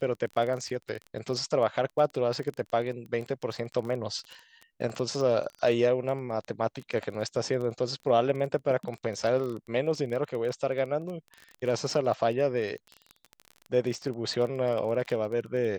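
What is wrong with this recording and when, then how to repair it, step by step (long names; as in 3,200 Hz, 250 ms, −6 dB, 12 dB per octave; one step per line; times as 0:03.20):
surface crackle 23 per second −34 dBFS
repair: click removal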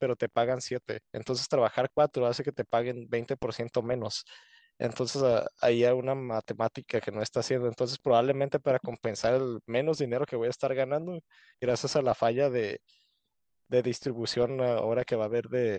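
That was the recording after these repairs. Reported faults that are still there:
none of them is left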